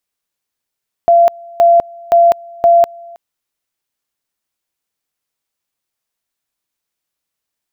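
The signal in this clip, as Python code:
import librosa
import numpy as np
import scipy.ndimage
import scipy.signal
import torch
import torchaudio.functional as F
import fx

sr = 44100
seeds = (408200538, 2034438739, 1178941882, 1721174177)

y = fx.two_level_tone(sr, hz=684.0, level_db=-4.5, drop_db=26.0, high_s=0.2, low_s=0.32, rounds=4)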